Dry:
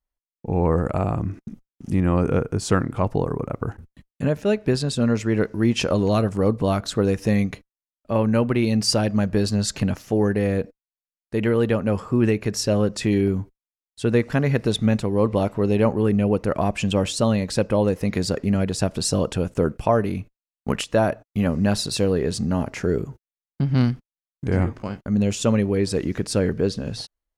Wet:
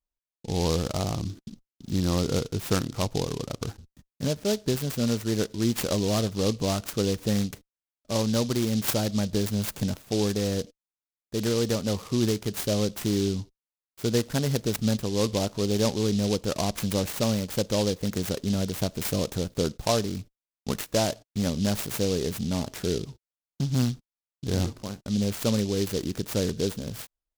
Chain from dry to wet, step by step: noise-modulated delay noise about 4400 Hz, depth 0.11 ms; gain -5.5 dB

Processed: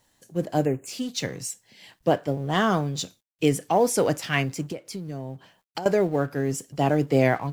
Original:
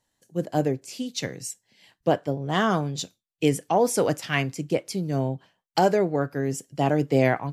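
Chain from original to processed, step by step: G.711 law mismatch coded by mu; 0.66–0.87 spectral delete 3000–6400 Hz; 4.7–5.86 compressor 8:1, threshold -31 dBFS, peak gain reduction 16 dB

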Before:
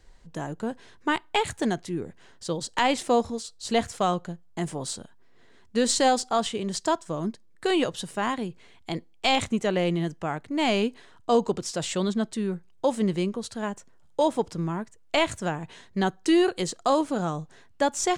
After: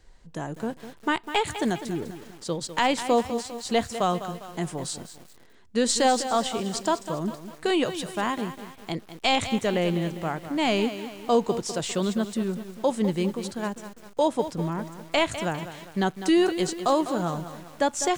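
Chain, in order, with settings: lo-fi delay 0.201 s, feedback 55%, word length 7-bit, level -11 dB

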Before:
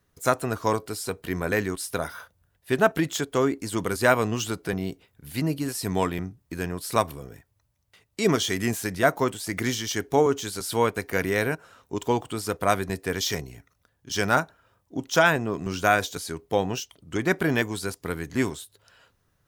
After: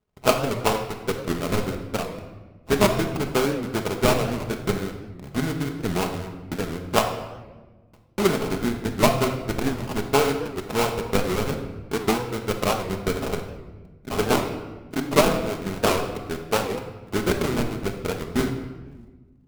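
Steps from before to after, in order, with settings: LPF 3300 Hz 12 dB/oct; high shelf 2100 Hz +6.5 dB; transient shaper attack +11 dB, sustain -8 dB; in parallel at -8 dB: fuzz box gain 32 dB, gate -33 dBFS; on the sum: sample-rate reducer 1800 Hz, jitter 20%; on a send at -3.5 dB: reverb RT60 1.3 s, pre-delay 5 ms; on the sum: record warp 78 rpm, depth 160 cents; gain -9.5 dB

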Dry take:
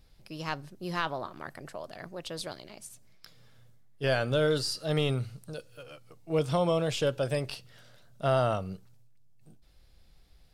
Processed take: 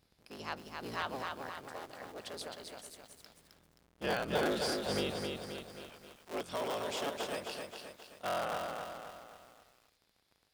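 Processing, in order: cycle switcher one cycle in 3, inverted; HPF 210 Hz 6 dB/oct, from 5.11 s 750 Hz; lo-fi delay 0.264 s, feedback 55%, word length 9-bit, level -4 dB; gain -6 dB

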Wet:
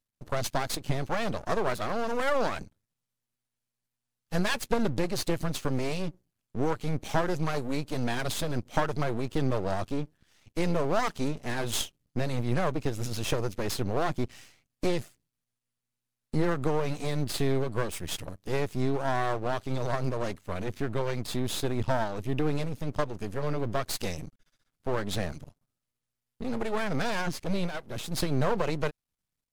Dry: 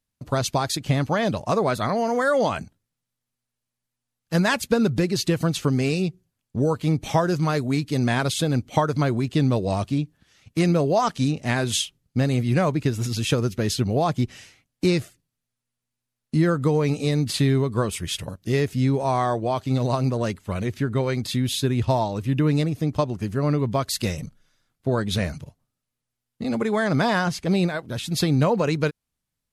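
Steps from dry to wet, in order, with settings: half-wave rectifier; gain -2 dB

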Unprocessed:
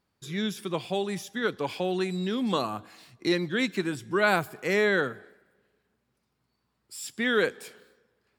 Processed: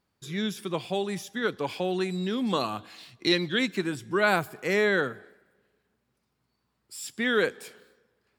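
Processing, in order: 2.61–3.59 bell 3400 Hz +8.5 dB 1.1 oct

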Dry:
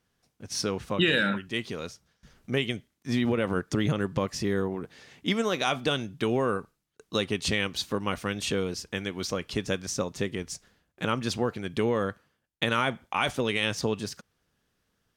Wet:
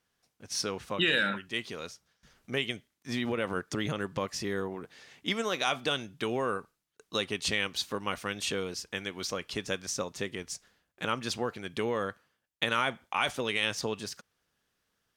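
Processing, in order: low shelf 400 Hz -8.5 dB; gain -1 dB

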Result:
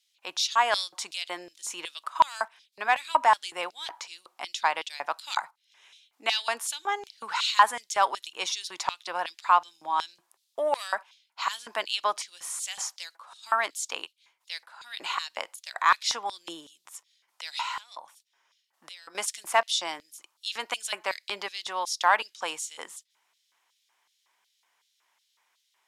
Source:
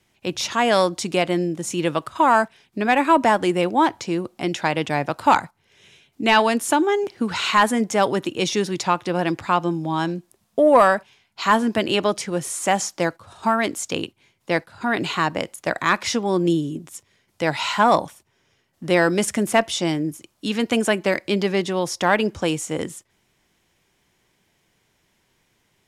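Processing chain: 17.6–19.15 compressor 5:1, threshold -28 dBFS, peak gain reduction 15 dB; LFO high-pass square 2.7 Hz 970–3900 Hz; gain -6 dB

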